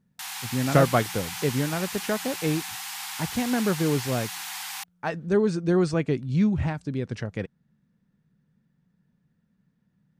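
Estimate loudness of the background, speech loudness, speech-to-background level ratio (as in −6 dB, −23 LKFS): −33.5 LKFS, −26.5 LKFS, 7.0 dB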